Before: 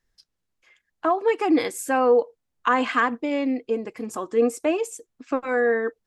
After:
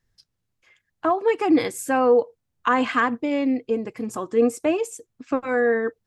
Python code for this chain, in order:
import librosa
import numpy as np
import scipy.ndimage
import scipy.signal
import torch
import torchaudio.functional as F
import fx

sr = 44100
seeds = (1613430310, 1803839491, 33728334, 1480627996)

y = fx.peak_eq(x, sr, hz=110.0, db=11.0, octaves=1.4)